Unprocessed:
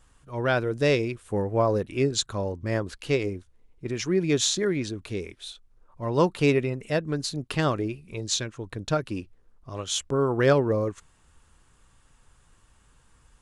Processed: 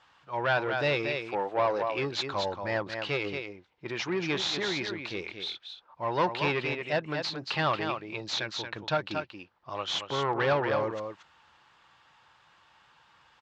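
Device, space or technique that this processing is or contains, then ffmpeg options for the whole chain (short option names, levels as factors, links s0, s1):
overdrive pedal into a guitar cabinet: -filter_complex "[0:a]asettb=1/sr,asplit=3[s0][s1][s2];[s0]atrim=end=1.224[s3];[s1]atrim=start=1.22:end=1.83,asetpts=PTS-STARTPTS,afade=t=in:d=0.004:c=qsin,afade=t=out:st=0.606:d=0.004:c=qsin,highpass=290[s4];[s2]atrim=start=1.826[s5];[s3][s4]acrossfade=d=0.004:c1=hsin:c2=qsin[s6];[s6][s5]acrossfade=d=0.004:c1=qsin:c2=hsin,highshelf=f=4400:g=9.5,aecho=1:1:229:0.355,asplit=2[s7][s8];[s8]highpass=f=720:p=1,volume=10,asoftclip=type=tanh:threshold=0.422[s9];[s7][s9]amix=inputs=2:normalize=0,lowpass=f=3800:p=1,volume=0.501,highpass=91,equalizer=f=250:t=q:w=4:g=-7,equalizer=f=430:t=q:w=4:g=-6,equalizer=f=850:t=q:w=4:g=6,lowpass=f=4400:w=0.5412,lowpass=f=4400:w=1.3066,volume=0.355"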